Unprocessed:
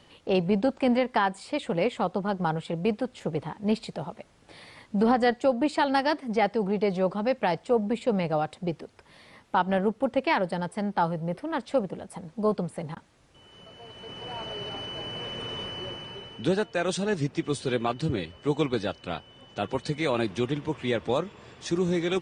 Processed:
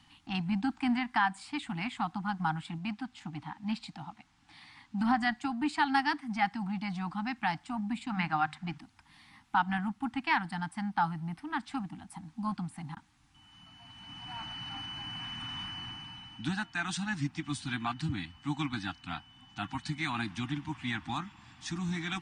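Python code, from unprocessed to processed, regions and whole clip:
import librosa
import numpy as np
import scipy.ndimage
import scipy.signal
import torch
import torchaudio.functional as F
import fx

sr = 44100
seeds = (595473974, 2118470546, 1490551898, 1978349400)

y = fx.chain(x, sr, fx.lowpass(hz=7300.0, slope=12),
    fx.low_shelf(hz=220.0, db=-5.0), at=(2.78, 5.01))
y = fx.chain(y, sr, fx.lowpass(hz=8800.0, slope=12),
    fx.peak_eq(hz=1600.0, db=8.0, octaves=1.8),
    fx.hum_notches(base_hz=50, count=5), at=(8.1, 8.78))
y = scipy.signal.sosfilt(scipy.signal.ellip(3, 1.0, 40, [300.0, 770.0], 'bandstop', fs=sr, output='sos'), y)
y = fx.dynamic_eq(y, sr, hz=1600.0, q=1.5, threshold_db=-45.0, ratio=4.0, max_db=5)
y = y * 10.0 ** (-4.0 / 20.0)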